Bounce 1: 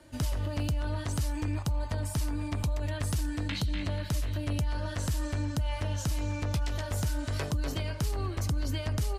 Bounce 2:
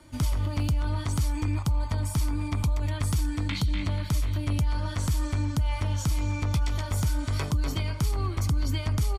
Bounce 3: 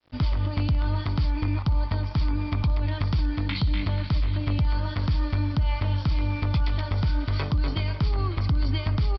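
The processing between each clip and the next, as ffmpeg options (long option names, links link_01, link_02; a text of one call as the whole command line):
ffmpeg -i in.wav -af "aecho=1:1:0.9:0.4,volume=2dB" out.wav
ffmpeg -i in.wav -af "aresample=11025,aeval=exprs='sgn(val(0))*max(abs(val(0))-0.00376,0)':channel_layout=same,aresample=44100,aecho=1:1:547:0.141,volume=2.5dB" out.wav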